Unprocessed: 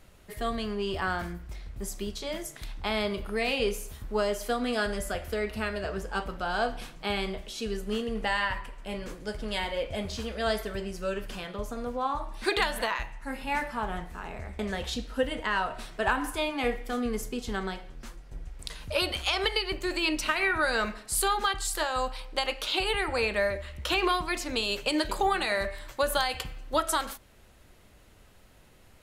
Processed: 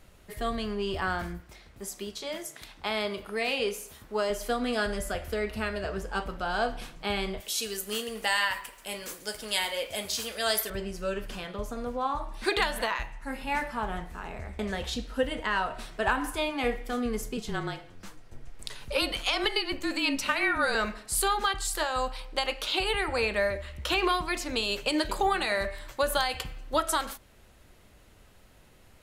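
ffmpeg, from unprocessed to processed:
ffmpeg -i in.wav -filter_complex "[0:a]asettb=1/sr,asplit=3[link_01][link_02][link_03];[link_01]atrim=end=1.404[link_04];[link_02]atrim=start=1.4:end=4.3,asetpts=PTS-STARTPTS,afade=type=in:duration=0.004:curve=qsin,afade=type=out:start_time=2.896:duration=0.004:curve=qsin,highpass=frequency=290:poles=1[link_05];[link_03]atrim=start=4.296[link_06];[link_04][link_05]acrossfade=duration=0.004:curve1=hsin:curve2=qsin[link_07];[link_07][link_06]acrossfade=duration=0.004:curve1=qsin:curve2=hsin,asettb=1/sr,asplit=3[link_08][link_09][link_10];[link_08]atrim=end=7.404[link_11];[link_09]atrim=start=7.4:end=10.7,asetpts=PTS-STARTPTS,afade=type=in:duration=0.004:curve=qsin,afade=type=out:start_time=3.296:duration=0.004:curve=qsin,aemphasis=mode=production:type=riaa[link_12];[link_10]atrim=start=10.696[link_13];[link_11][link_12]acrossfade=duration=0.004:curve1=hsin:curve2=qsin[link_14];[link_14][link_13]acrossfade=duration=0.004:curve1=qsin:curve2=hsin,asettb=1/sr,asplit=3[link_15][link_16][link_17];[link_15]atrim=end=17.374[link_18];[link_16]atrim=start=17.37:end=20.75,asetpts=PTS-STARTPTS,afade=type=in:duration=0.004:curve=qsin,afade=type=out:start_time=3.376:duration=0.004:curve=qsin,afreqshift=-33[link_19];[link_17]atrim=start=20.746[link_20];[link_18][link_19]acrossfade=duration=0.004:curve1=hsin:curve2=qsin[link_21];[link_21][link_20]acrossfade=duration=0.004:curve1=qsin:curve2=hsin" out.wav

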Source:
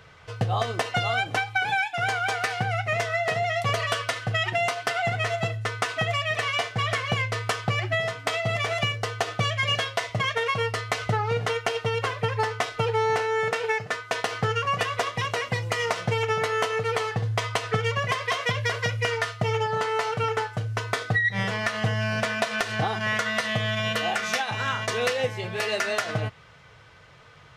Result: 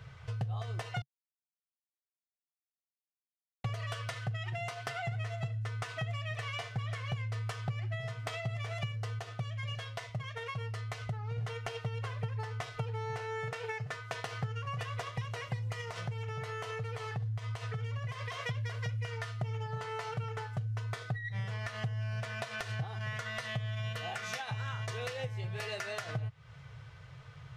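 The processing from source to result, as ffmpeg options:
ffmpeg -i in.wav -filter_complex "[0:a]asettb=1/sr,asplit=3[link_01][link_02][link_03];[link_01]atrim=end=15.814[link_04];[link_02]atrim=start=15.81:end=18.4,asetpts=PTS-STARTPTS,afade=type=in:duration=0.004:curve=qsin,afade=type=out:start_time=2.586:duration=0.004:curve=qsin,acompressor=threshold=-27dB:ratio=6:attack=3.2:release=140:knee=1:detection=peak[link_05];[link_03]atrim=start=18.396[link_06];[link_04][link_05]acrossfade=duration=0.004:curve1=hsin:curve2=qsin[link_07];[link_07][link_06]acrossfade=duration=0.004:curve1=qsin:curve2=hsin,asplit=5[link_08][link_09][link_10][link_11][link_12];[link_08]atrim=end=1.02,asetpts=PTS-STARTPTS,afade=type=out:start_time=1.016:duration=0.004:curve=hsin[link_13];[link_09]atrim=start=1.02:end=3.64,asetpts=PTS-STARTPTS,volume=0[link_14];[link_10]atrim=start=3.64:end=9.192,asetpts=PTS-STARTPTS,afade=type=in:duration=0.004:curve=hsin[link_15];[link_11]atrim=start=9.188:end=11.382,asetpts=PTS-STARTPTS,volume=-6.5dB[link_16];[link_12]atrim=start=11.378[link_17];[link_13][link_14][link_15]concat=n=3:v=0:a=1[link_18];[link_18][link_16]acrossfade=duration=0.004:curve1=hsin:curve2=hsin[link_19];[link_19][link_17]acrossfade=duration=0.004:curve1=hsin:curve2=hsin,lowshelf=frequency=170:width_type=q:width=3:gain=8,acompressor=threshold=-30dB:ratio=4,volume=-6dB" out.wav

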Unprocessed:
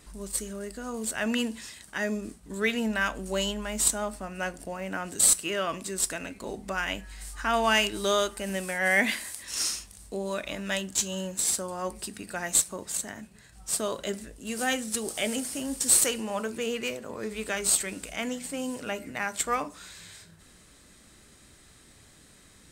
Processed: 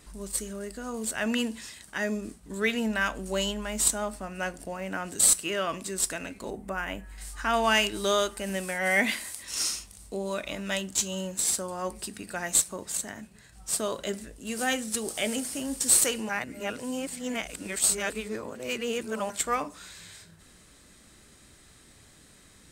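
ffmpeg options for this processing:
ffmpeg -i in.wav -filter_complex "[0:a]asettb=1/sr,asplit=3[link_01][link_02][link_03];[link_01]atrim=end=6.504[link_04];[link_02]atrim=start=6.5:end=7.18,asetpts=PTS-STARTPTS,afade=type=in:duration=0.004:curve=qsin,afade=type=out:start_time=0.676:duration=0.004:curve=qsin,equalizer=frequency=4700:width=0.7:gain=-12[link_05];[link_03]atrim=start=7.176[link_06];[link_04][link_05]acrossfade=duration=0.004:curve1=hsin:curve2=qsin[link_07];[link_07][link_06]acrossfade=duration=0.004:curve1=qsin:curve2=hsin,asettb=1/sr,asplit=3[link_08][link_09][link_10];[link_08]atrim=end=8.744[link_11];[link_09]atrim=start=8.74:end=11.31,asetpts=PTS-STARTPTS,afade=type=in:duration=0.004:curve=qsin,afade=type=out:start_time=2.566:duration=0.004:curve=qsin,bandreject=frequency=1700:width=14[link_12];[link_10]atrim=start=11.306[link_13];[link_11][link_12]acrossfade=duration=0.004:curve1=hsin:curve2=qsin[link_14];[link_14][link_13]acrossfade=duration=0.004:curve1=qsin:curve2=hsin,asplit=3[link_15][link_16][link_17];[link_15]atrim=end=16.292[link_18];[link_16]atrim=start=16.288:end=19.302,asetpts=PTS-STARTPTS,areverse[link_19];[link_17]atrim=start=19.298[link_20];[link_18][link_19]acrossfade=duration=0.004:curve1=hsin:curve2=hsin[link_21];[link_21][link_20]acrossfade=duration=0.004:curve1=hsin:curve2=hsin" out.wav

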